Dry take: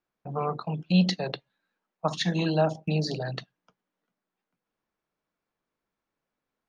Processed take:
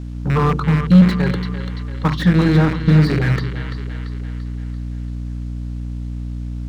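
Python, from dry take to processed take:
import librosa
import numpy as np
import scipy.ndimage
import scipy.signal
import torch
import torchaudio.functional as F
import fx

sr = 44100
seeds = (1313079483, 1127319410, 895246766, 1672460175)

p1 = fx.rattle_buzz(x, sr, strikes_db=-34.0, level_db=-18.0)
p2 = fx.rider(p1, sr, range_db=10, speed_s=0.5)
p3 = p1 + (p2 * librosa.db_to_amplitude(2.0))
p4 = fx.bass_treble(p3, sr, bass_db=1, treble_db=-13)
p5 = fx.fixed_phaser(p4, sr, hz=2500.0, stages=6)
p6 = fx.quant_dither(p5, sr, seeds[0], bits=10, dither='triangular')
p7 = fx.add_hum(p6, sr, base_hz=60, snr_db=11)
p8 = fx.leveller(p7, sr, passes=1)
p9 = fx.air_absorb(p8, sr, metres=88.0)
p10 = p9 + fx.echo_split(p9, sr, split_hz=380.0, low_ms=149, high_ms=340, feedback_pct=52, wet_db=-11.5, dry=0)
p11 = fx.slew_limit(p10, sr, full_power_hz=91.0)
y = p11 * librosa.db_to_amplitude(5.0)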